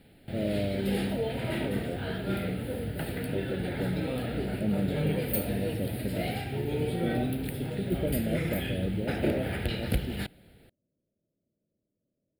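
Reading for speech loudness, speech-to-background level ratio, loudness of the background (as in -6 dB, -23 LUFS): -36.0 LUFS, -3.0 dB, -33.0 LUFS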